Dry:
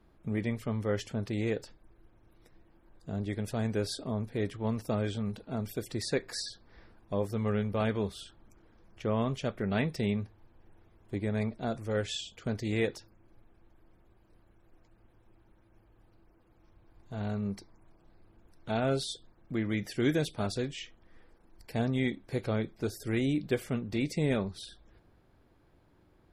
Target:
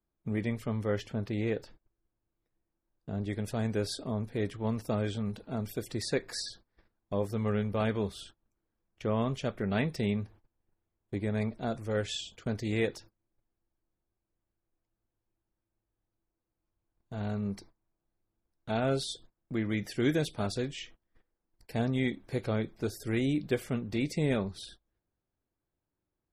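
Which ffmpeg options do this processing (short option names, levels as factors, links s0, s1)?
-filter_complex "[0:a]agate=range=0.0708:threshold=0.00282:ratio=16:detection=peak,asettb=1/sr,asplit=3[s0][s1][s2];[s0]atrim=end=0.984[s3];[s1]atrim=start=0.98:end=3.25,asetpts=PTS-STARTPTS,afade=t=in:d=0.004:c=qsin,afade=t=out:st=2.266:d=0.004:c=qsin,equalizer=f=8400:t=o:w=1.2:g=-9.5[s4];[s2]atrim=start=3.246[s5];[s3][s4]acrossfade=d=0.004:c1=hsin:c2=qsin[s6];[s6][s5]acrossfade=d=0.004:c1=qsin:c2=hsin"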